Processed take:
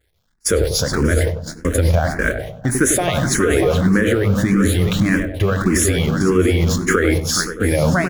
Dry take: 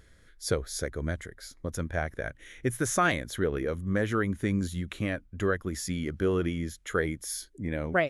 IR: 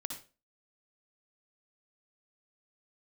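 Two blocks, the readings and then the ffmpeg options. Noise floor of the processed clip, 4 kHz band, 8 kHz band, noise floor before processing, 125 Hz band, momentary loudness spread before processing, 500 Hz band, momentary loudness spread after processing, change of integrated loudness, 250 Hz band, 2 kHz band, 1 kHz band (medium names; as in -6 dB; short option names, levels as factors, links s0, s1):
-63 dBFS, +15.5 dB, +16.0 dB, -57 dBFS, +15.5 dB, 9 LU, +12.5 dB, 5 LU, +13.5 dB, +14.0 dB, +11.5 dB, +9.0 dB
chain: -filter_complex "[0:a]aeval=exprs='val(0)+0.5*0.0106*sgn(val(0))':c=same,asplit=2[s0][s1];[s1]aecho=0:1:419|642:0.266|0.188[s2];[s0][s2]amix=inputs=2:normalize=0,agate=range=0.00631:threshold=0.0224:ratio=16:detection=peak,acompressor=threshold=0.0224:ratio=4,asplit=2[s3][s4];[s4]adelay=22,volume=0.224[s5];[s3][s5]amix=inputs=2:normalize=0,asplit=2[s6][s7];[s7]adelay=97,lowpass=f=1000:p=1,volume=0.473,asplit=2[s8][s9];[s9]adelay=97,lowpass=f=1000:p=1,volume=0.54,asplit=2[s10][s11];[s11]adelay=97,lowpass=f=1000:p=1,volume=0.54,asplit=2[s12][s13];[s13]adelay=97,lowpass=f=1000:p=1,volume=0.54,asplit=2[s14][s15];[s15]adelay=97,lowpass=f=1000:p=1,volume=0.54,asplit=2[s16][s17];[s17]adelay=97,lowpass=f=1000:p=1,volume=0.54,asplit=2[s18][s19];[s19]adelay=97,lowpass=f=1000:p=1,volume=0.54[s20];[s6][s8][s10][s12][s14][s16][s18][s20]amix=inputs=8:normalize=0,asplit=2[s21][s22];[1:a]atrim=start_sample=2205[s23];[s22][s23]afir=irnorm=-1:irlink=0,volume=0.141[s24];[s21][s24]amix=inputs=2:normalize=0,alimiter=level_in=21.1:limit=0.891:release=50:level=0:latency=1,asplit=2[s25][s26];[s26]afreqshift=1.7[s27];[s25][s27]amix=inputs=2:normalize=1,volume=0.708"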